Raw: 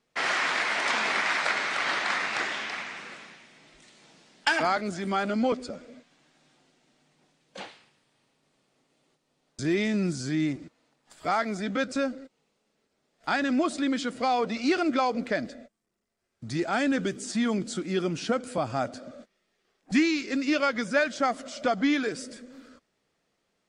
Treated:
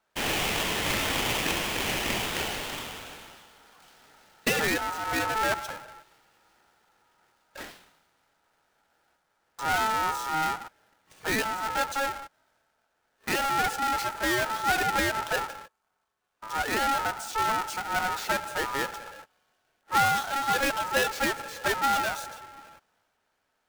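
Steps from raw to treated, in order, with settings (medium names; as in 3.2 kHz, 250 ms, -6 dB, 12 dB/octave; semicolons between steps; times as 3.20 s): square wave that keeps the level; ring modulator 1.1 kHz; transient shaper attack -1 dB, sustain +4 dB; trim -2 dB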